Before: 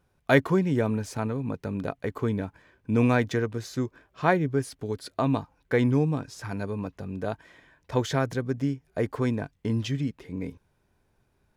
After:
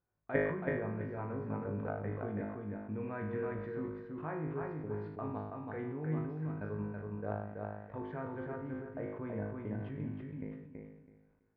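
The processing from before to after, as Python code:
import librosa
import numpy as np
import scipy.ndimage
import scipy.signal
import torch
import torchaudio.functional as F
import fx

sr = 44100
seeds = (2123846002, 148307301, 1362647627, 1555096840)

y = fx.low_shelf(x, sr, hz=120.0, db=-3.0)
y = fx.level_steps(y, sr, step_db=16)
y = scipy.signal.sosfilt(scipy.signal.butter(4, 2000.0, 'lowpass', fs=sr, output='sos'), y)
y = fx.comb_fb(y, sr, f0_hz=52.0, decay_s=0.69, harmonics='all', damping=0.0, mix_pct=90)
y = fx.echo_feedback(y, sr, ms=328, feedback_pct=22, wet_db=-3.5)
y = fx.sustainer(y, sr, db_per_s=52.0)
y = y * 10.0 ** (3.0 / 20.0)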